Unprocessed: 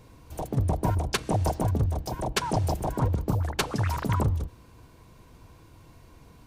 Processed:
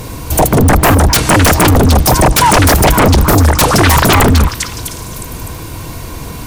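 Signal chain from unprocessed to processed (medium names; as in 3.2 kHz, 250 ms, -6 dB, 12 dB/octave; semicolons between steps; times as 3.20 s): treble shelf 6.6 kHz +11 dB; repeats whose band climbs or falls 253 ms, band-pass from 1.6 kHz, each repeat 0.7 oct, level -7 dB; sine folder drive 18 dB, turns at -8.5 dBFS; trim +4.5 dB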